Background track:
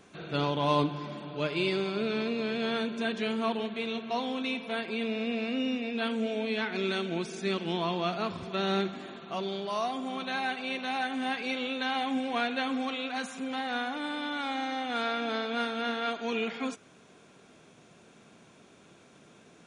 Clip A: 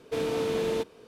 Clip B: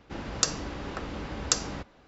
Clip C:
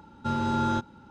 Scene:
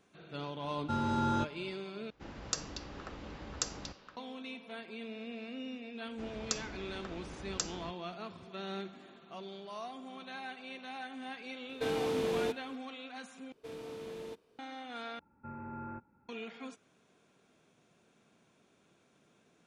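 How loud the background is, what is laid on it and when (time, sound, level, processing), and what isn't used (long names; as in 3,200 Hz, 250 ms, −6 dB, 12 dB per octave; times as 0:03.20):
background track −12 dB
0:00.64: mix in C −5 dB
0:02.10: overwrite with B −10 dB + echo through a band-pass that steps 234 ms, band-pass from 3,400 Hz, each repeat −1.4 octaves, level −5.5 dB
0:06.08: mix in B −10.5 dB
0:11.69: mix in A −4.5 dB
0:13.52: overwrite with A −16 dB
0:15.19: overwrite with C −17.5 dB + linear-phase brick-wall low-pass 2,700 Hz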